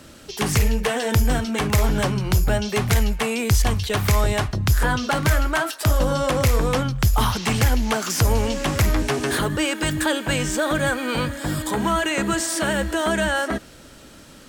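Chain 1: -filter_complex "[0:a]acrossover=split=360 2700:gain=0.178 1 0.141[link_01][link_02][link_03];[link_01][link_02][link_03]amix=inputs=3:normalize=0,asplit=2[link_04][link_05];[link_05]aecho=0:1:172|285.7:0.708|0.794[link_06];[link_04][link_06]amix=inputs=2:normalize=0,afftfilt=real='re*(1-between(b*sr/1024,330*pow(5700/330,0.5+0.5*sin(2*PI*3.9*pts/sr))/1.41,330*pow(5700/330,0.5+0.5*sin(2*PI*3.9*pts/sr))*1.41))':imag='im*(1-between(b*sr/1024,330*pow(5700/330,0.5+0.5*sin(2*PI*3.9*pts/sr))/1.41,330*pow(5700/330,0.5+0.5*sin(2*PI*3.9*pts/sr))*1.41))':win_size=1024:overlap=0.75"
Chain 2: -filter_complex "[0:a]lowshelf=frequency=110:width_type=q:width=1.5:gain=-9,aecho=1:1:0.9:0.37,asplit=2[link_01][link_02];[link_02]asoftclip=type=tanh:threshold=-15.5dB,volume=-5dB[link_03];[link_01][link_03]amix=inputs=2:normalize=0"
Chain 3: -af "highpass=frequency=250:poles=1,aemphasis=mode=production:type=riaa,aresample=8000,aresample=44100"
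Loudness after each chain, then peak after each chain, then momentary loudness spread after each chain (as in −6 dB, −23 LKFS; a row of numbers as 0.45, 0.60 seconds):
−24.5, −18.5, −24.5 LKFS; −8.0, −4.0, −5.0 dBFS; 5, 3, 5 LU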